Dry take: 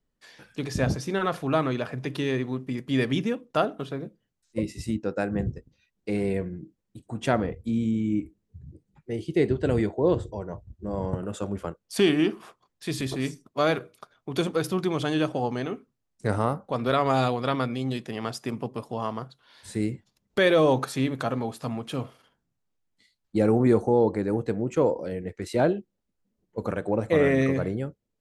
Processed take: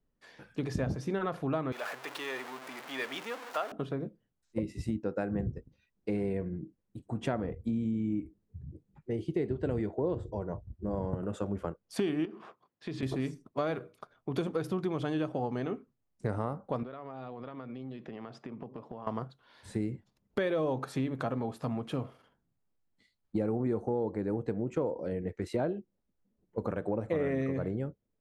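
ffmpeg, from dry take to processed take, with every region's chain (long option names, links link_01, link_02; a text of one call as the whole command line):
ffmpeg -i in.wav -filter_complex "[0:a]asettb=1/sr,asplit=3[link_01][link_02][link_03];[link_01]atrim=end=1.724[link_04];[link_02]atrim=start=1.72:end=3.72,asetpts=PTS-STARTPTS,afade=type=in:duration=0.004:curve=qsin,afade=type=out:start_time=1.996:duration=0.004:curve=qsin,aeval=exprs='val(0)+0.5*0.0376*sgn(val(0))':channel_layout=same,highpass=920[link_05];[link_03]atrim=start=3.716[link_06];[link_04][link_05]acrossfade=duration=0.004:curve1=hsin:curve2=qsin[link_07];[link_07][link_06]acrossfade=duration=0.004:curve1=qsin:curve2=hsin,asettb=1/sr,asplit=3[link_08][link_09][link_10];[link_08]atrim=end=12.254[link_11];[link_09]atrim=start=12.25:end=13.03,asetpts=PTS-STARTPTS,afade=type=in:duration=0.004:curve=qsin,afade=type=out:start_time=0.776:duration=0.004:curve=qsin,highpass=140,lowpass=4600,acompressor=threshold=-32dB:ratio=6:attack=3.2:release=140:knee=1:detection=peak[link_12];[link_10]atrim=start=13.026[link_13];[link_11][link_12]acrossfade=duration=0.004:curve1=hsin:curve2=qsin[link_14];[link_14][link_13]acrossfade=duration=0.004:curve1=qsin:curve2=hsin,asettb=1/sr,asplit=3[link_15][link_16][link_17];[link_15]atrim=end=16.834[link_18];[link_16]atrim=start=16.83:end=19.07,asetpts=PTS-STARTPTS,afade=type=in:duration=0.004:curve=qsin,afade=type=out:start_time=2.236:duration=0.004:curve=qsin,highpass=130,lowpass=3500,acompressor=threshold=-37dB:ratio=16:attack=3.2:release=140:knee=1:detection=peak[link_19];[link_17]atrim=start=19.066[link_20];[link_18][link_19]acrossfade=duration=0.004:curve1=hsin:curve2=qsin[link_21];[link_21][link_20]acrossfade=duration=0.004:curve1=qsin:curve2=hsin,highshelf=frequency=2400:gain=-11.5,acompressor=threshold=-29dB:ratio=4" out.wav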